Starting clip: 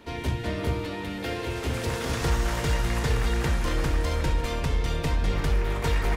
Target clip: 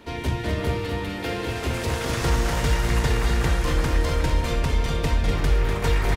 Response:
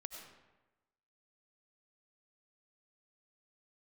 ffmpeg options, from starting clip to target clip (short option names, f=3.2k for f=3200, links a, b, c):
-filter_complex "[0:a]asplit=2[a][b];[b]aecho=0:1:247:0.473[c];[a][c]amix=inputs=2:normalize=0,volume=2.5dB"